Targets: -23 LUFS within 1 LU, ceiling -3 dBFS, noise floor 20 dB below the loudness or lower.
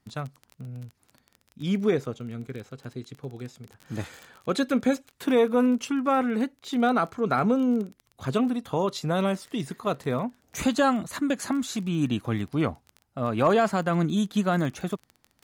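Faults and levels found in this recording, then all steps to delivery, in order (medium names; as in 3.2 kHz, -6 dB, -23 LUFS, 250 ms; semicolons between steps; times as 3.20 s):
tick rate 21 per s; loudness -26.5 LUFS; peak level -11.0 dBFS; loudness target -23.0 LUFS
-> de-click; trim +3.5 dB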